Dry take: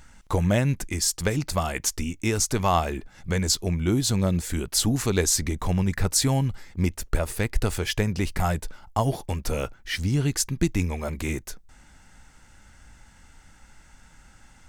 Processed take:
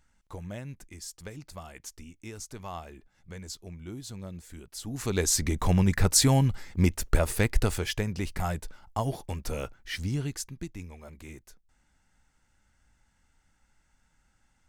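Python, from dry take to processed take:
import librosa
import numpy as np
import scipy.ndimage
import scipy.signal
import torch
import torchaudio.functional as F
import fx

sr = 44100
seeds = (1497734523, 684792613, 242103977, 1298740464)

y = fx.gain(x, sr, db=fx.line((4.82, -17.5), (5.05, -6.0), (5.63, 1.0), (7.48, 1.0), (8.04, -6.0), (10.11, -6.0), (10.71, -16.5)))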